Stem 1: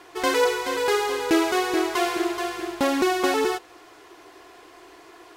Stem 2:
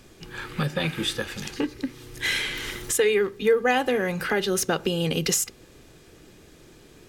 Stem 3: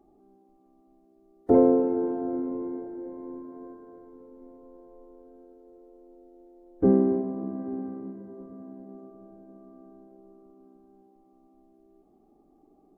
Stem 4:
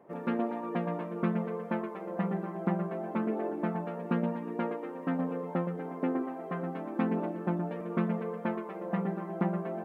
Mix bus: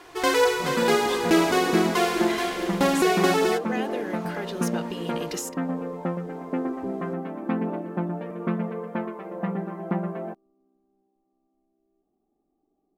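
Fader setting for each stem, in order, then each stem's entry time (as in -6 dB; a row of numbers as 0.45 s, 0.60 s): +0.5 dB, -10.0 dB, -13.5 dB, +3.0 dB; 0.00 s, 0.05 s, 0.00 s, 0.50 s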